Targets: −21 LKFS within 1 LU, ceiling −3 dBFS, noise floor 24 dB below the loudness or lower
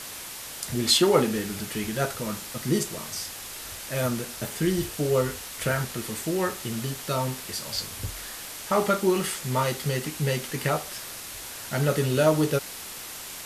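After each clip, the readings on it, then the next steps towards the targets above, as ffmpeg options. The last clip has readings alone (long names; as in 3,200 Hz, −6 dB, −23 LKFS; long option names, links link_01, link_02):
background noise floor −39 dBFS; target noise floor −52 dBFS; integrated loudness −27.5 LKFS; sample peak −6.5 dBFS; target loudness −21.0 LKFS
→ -af "afftdn=noise_reduction=13:noise_floor=-39"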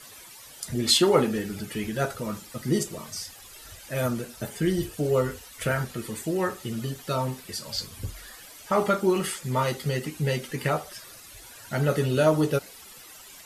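background noise floor −47 dBFS; target noise floor −51 dBFS
→ -af "afftdn=noise_reduction=6:noise_floor=-47"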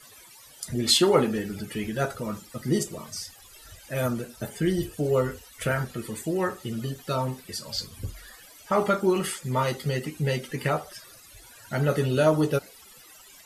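background noise floor −51 dBFS; integrated loudness −27.0 LKFS; sample peak −7.0 dBFS; target loudness −21.0 LKFS
→ -af "volume=6dB,alimiter=limit=-3dB:level=0:latency=1"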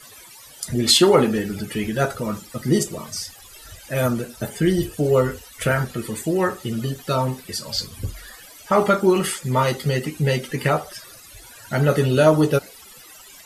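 integrated loudness −21.0 LKFS; sample peak −3.0 dBFS; background noise floor −45 dBFS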